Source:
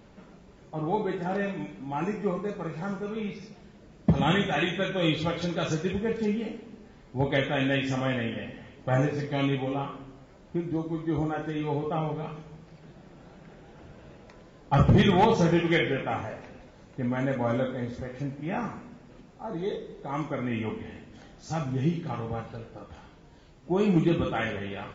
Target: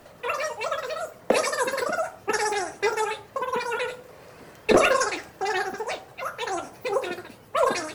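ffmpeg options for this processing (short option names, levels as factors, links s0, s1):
-filter_complex "[0:a]bass=f=250:g=4,treble=f=4000:g=10,acrossover=split=320|760|2900[s0][s1][s2][s3];[s3]acompressor=threshold=0.00224:ratio=6[s4];[s0][s1][s2][s4]amix=inputs=4:normalize=0,asetrate=138474,aresample=44100"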